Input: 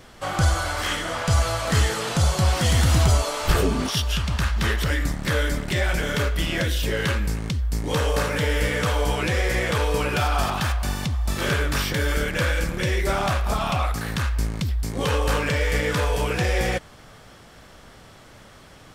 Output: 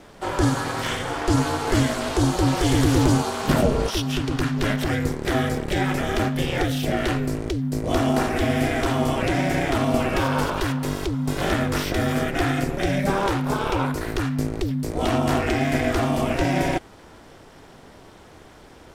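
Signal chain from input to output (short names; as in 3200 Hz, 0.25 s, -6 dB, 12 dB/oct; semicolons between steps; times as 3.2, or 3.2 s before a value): bell 330 Hz +7 dB 2.7 oct; ring modulator 200 Hz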